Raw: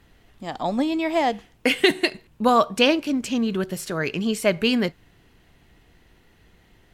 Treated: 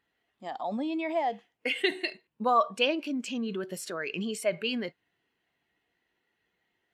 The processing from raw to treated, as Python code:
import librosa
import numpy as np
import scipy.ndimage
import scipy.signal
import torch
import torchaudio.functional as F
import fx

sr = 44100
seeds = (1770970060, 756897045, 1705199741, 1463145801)

p1 = fx.highpass(x, sr, hz=680.0, slope=6)
p2 = fx.over_compress(p1, sr, threshold_db=-35.0, ratio=-1.0)
p3 = p1 + (p2 * librosa.db_to_amplitude(-0.5))
p4 = fx.spectral_expand(p3, sr, expansion=1.5)
y = p4 * librosa.db_to_amplitude(-6.0)